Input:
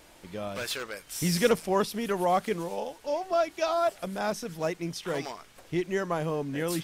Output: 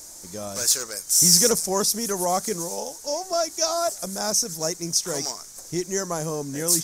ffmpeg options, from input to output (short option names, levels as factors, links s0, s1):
-filter_complex "[0:a]highshelf=f=4300:t=q:w=3:g=14,asplit=2[s0][s1];[s1]asoftclip=type=tanh:threshold=0.119,volume=0.355[s2];[s0][s2]amix=inputs=2:normalize=0,volume=0.891"